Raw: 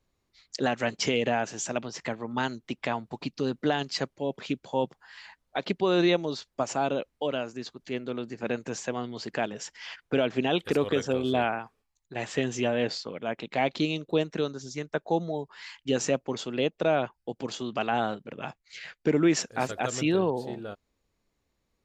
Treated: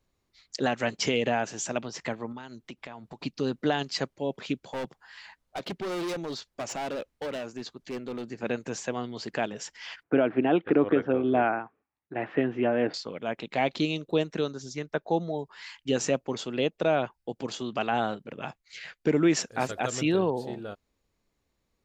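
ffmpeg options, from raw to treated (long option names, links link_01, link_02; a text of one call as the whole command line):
ffmpeg -i in.wav -filter_complex "[0:a]asettb=1/sr,asplit=3[link_01][link_02][link_03];[link_01]atrim=end=2.324[link_04];[link_02]atrim=start=2.32:end=3.23,asetpts=PTS-STARTPTS,afade=type=in:duration=0.004:curve=qsin,afade=type=out:start_time=0.906:duration=0.004:curve=qsin,acompressor=threshold=-38dB:ratio=6:attack=3.2:release=140:knee=1:detection=peak[link_05];[link_03]atrim=start=3.226[link_06];[link_04][link_05]acrossfade=duration=0.004:curve1=hsin:curve2=qsin[link_07];[link_07][link_06]acrossfade=duration=0.004:curve1=qsin:curve2=hsin,asettb=1/sr,asplit=3[link_08][link_09][link_10];[link_08]atrim=end=4.604[link_11];[link_09]atrim=start=4.6:end=8.31,asetpts=PTS-STARTPTS,afade=type=in:duration=0.004:curve=qsin,afade=type=out:start_time=3.706:duration=0.004:curve=qsin,asoftclip=type=hard:threshold=-30dB[link_12];[link_10]atrim=start=8.306[link_13];[link_11][link_12]acrossfade=duration=0.004:curve1=hsin:curve2=qsin[link_14];[link_14][link_13]acrossfade=duration=0.004:curve1=qsin:curve2=hsin,asettb=1/sr,asplit=3[link_15][link_16][link_17];[link_15]atrim=end=10.034[link_18];[link_16]atrim=start=10.03:end=12.94,asetpts=PTS-STARTPTS,afade=type=in:duration=0.004:curve=qsin,afade=type=out:start_time=2.906:duration=0.004:curve=qsin,highpass=120,equalizer=frequency=310:width_type=q:width=4:gain=9,equalizer=frequency=710:width_type=q:width=4:gain=3,equalizer=frequency=1400:width_type=q:width=4:gain=3,lowpass=frequency=2300:width=0.5412,lowpass=frequency=2300:width=1.3066[link_19];[link_17]atrim=start=12.936[link_20];[link_18][link_19]acrossfade=duration=0.004:curve1=hsin:curve2=qsin[link_21];[link_21][link_20]acrossfade=duration=0.004:curve1=qsin:curve2=hsin,asettb=1/sr,asplit=3[link_22][link_23][link_24];[link_22]atrim=end=14.734[link_25];[link_23]atrim=start=14.73:end=15.39,asetpts=PTS-STARTPTS,afade=type=in:duration=0.004:curve=qsin,afade=type=out:start_time=0.656:duration=0.004:curve=qsin,equalizer=frequency=7800:width=1.9:gain=-7[link_26];[link_24]atrim=start=15.386[link_27];[link_25][link_26]acrossfade=duration=0.004:curve1=hsin:curve2=qsin[link_28];[link_28][link_27]acrossfade=duration=0.004:curve1=qsin:curve2=hsin" out.wav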